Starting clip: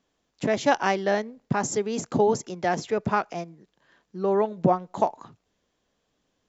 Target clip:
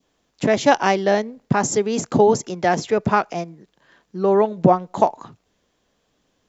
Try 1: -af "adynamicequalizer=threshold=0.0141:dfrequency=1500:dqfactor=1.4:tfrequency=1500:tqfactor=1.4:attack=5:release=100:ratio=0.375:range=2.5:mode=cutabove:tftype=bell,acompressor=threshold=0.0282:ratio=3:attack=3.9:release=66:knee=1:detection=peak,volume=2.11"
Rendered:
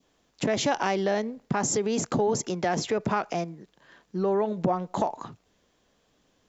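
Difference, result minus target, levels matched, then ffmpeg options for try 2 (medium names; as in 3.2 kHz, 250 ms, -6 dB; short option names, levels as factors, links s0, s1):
compression: peak gain reduction +13.5 dB
-af "adynamicequalizer=threshold=0.0141:dfrequency=1500:dqfactor=1.4:tfrequency=1500:tqfactor=1.4:attack=5:release=100:ratio=0.375:range=2.5:mode=cutabove:tftype=bell,volume=2.11"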